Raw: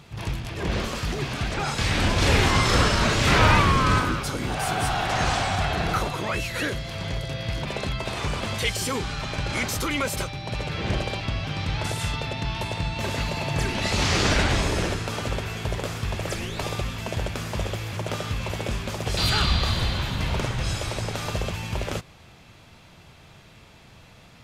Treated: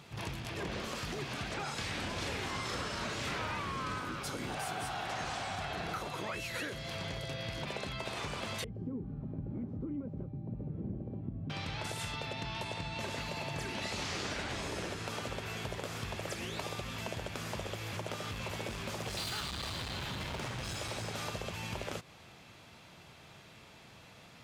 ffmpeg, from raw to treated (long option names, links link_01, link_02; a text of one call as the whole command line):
ffmpeg -i in.wav -filter_complex "[0:a]asettb=1/sr,asplit=3[link_01][link_02][link_03];[link_01]atrim=end=8.644[link_04];[link_02]atrim=start=8.64:end=11.5,asetpts=PTS-STARTPTS,afade=type=in:duration=0.004:curve=qsin,afade=type=out:start_time=2.856:duration=0.004:curve=qsin,lowpass=frequency=250:width_type=q:width=1.6[link_05];[link_03]atrim=start=11.496[link_06];[link_04][link_05]acrossfade=duration=0.004:curve1=hsin:curve2=qsin[link_07];[link_07][link_06]acrossfade=duration=0.004:curve1=qsin:curve2=hsin,asettb=1/sr,asplit=3[link_08][link_09][link_10];[link_08]atrim=end=12.434[link_11];[link_09]atrim=start=12.43:end=13.18,asetpts=PTS-STARTPTS,afade=type=in:duration=0.004:curve=qsin,afade=type=out:start_time=0.746:duration=0.004:curve=qsin,lowpass=12000[link_12];[link_10]atrim=start=13.176[link_13];[link_11][link_12]acrossfade=duration=0.004:curve1=hsin:curve2=qsin[link_14];[link_14][link_13]acrossfade=duration=0.004:curve1=qsin:curve2=hsin,asettb=1/sr,asplit=3[link_15][link_16][link_17];[link_15]atrim=end=18.164[link_18];[link_16]atrim=start=18.16:end=21.2,asetpts=PTS-STARTPTS,afade=type=in:duration=0.004:curve=qsin,afade=type=out:start_time=3.036:duration=0.004:curve=qsin,asoftclip=type=hard:threshold=-25dB[link_19];[link_17]atrim=start=21.196[link_20];[link_18][link_19]acrossfade=duration=0.004:curve1=hsin:curve2=qsin[link_21];[link_21][link_20]acrossfade=duration=0.004:curve1=qsin:curve2=hsin,highpass=frequency=160:poles=1,acompressor=threshold=-32dB:ratio=6,volume=-3.5dB" out.wav